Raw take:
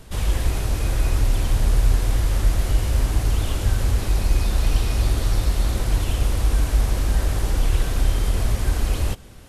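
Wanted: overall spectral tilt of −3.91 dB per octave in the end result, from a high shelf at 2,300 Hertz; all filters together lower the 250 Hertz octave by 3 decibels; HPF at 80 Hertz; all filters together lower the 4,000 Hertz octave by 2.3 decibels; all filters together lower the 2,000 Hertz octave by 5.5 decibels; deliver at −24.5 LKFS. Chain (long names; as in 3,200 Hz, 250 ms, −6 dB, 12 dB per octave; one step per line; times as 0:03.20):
high-pass filter 80 Hz
parametric band 250 Hz −4 dB
parametric band 2,000 Hz −9 dB
high-shelf EQ 2,300 Hz +6 dB
parametric band 4,000 Hz −6 dB
level +3 dB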